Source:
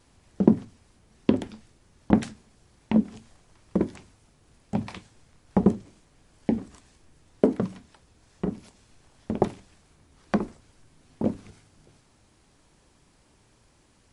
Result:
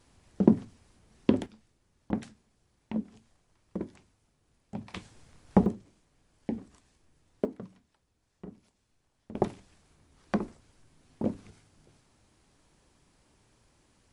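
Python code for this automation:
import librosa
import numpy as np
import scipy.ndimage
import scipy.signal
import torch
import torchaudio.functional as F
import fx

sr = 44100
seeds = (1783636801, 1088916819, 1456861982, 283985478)

y = fx.gain(x, sr, db=fx.steps((0.0, -2.5), (1.46, -11.5), (4.94, 1.0), (5.66, -9.0), (7.45, -16.5), (9.35, -4.5)))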